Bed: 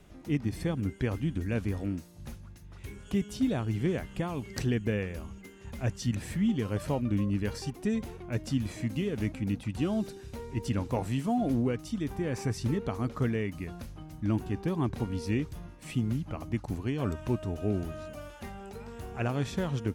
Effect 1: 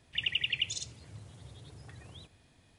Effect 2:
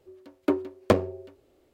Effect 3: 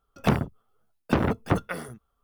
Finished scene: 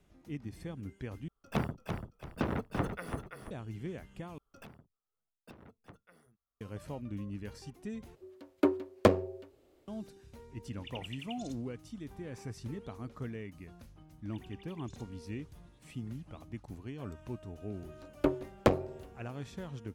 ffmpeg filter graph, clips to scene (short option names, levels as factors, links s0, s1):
-filter_complex "[3:a]asplit=2[s0][s1];[2:a]asplit=2[s2][s3];[1:a]asplit=2[s4][s5];[0:a]volume=0.266[s6];[s0]asplit=5[s7][s8][s9][s10][s11];[s8]adelay=337,afreqshift=-35,volume=0.531[s12];[s9]adelay=674,afreqshift=-70,volume=0.17[s13];[s10]adelay=1011,afreqshift=-105,volume=0.0543[s14];[s11]adelay=1348,afreqshift=-140,volume=0.0174[s15];[s7][s12][s13][s14][s15]amix=inputs=5:normalize=0[s16];[s1]acompressor=threshold=0.0178:ratio=12:attack=0.16:release=783:knee=1:detection=rms[s17];[s5]acompressor=threshold=0.01:ratio=6:attack=3.2:release=140:knee=1:detection=peak[s18];[s3]tremolo=f=240:d=0.788[s19];[s6]asplit=4[s20][s21][s22][s23];[s20]atrim=end=1.284[s24];[s16]atrim=end=2.23,asetpts=PTS-STARTPTS,volume=0.316[s25];[s21]atrim=start=3.506:end=4.384[s26];[s17]atrim=end=2.23,asetpts=PTS-STARTPTS,volume=0.398[s27];[s22]atrim=start=6.606:end=8.154[s28];[s2]atrim=end=1.73,asetpts=PTS-STARTPTS,volume=0.75[s29];[s23]atrim=start=9.876[s30];[s4]atrim=end=2.78,asetpts=PTS-STARTPTS,volume=0.158,afade=t=in:d=0.004:c=hsin,afade=t=out:st=2.776:d=0.004:c=hsin,adelay=10690[s31];[s18]atrim=end=2.78,asetpts=PTS-STARTPTS,volume=0.158,afade=t=in:d=0.004:c=hsin,afade=t=out:st=2.776:d=0.004:c=hsin,adelay=14180[s32];[s19]atrim=end=1.73,asetpts=PTS-STARTPTS,volume=0.841,afade=t=in:d=0.004:c=hsin,afade=t=out:st=1.726:d=0.004:c=hsin,adelay=17760[s33];[s24][s25]acrossfade=d=0.004:c1=hsin:c2=hsin[s34];[s34][s26]acrossfade=d=0.004:c1=hsin:c2=hsin[s35];[s35][s27]acrossfade=d=0.004:c1=hsin:c2=hsin[s36];[s36][s28]acrossfade=d=0.004:c1=hsin:c2=hsin[s37];[s37][s29]acrossfade=d=0.004:c1=hsin:c2=hsin[s38];[s38][s30]acrossfade=d=0.004:c1=hsin:c2=hsin[s39];[s39][s31][s32][s33]amix=inputs=4:normalize=0"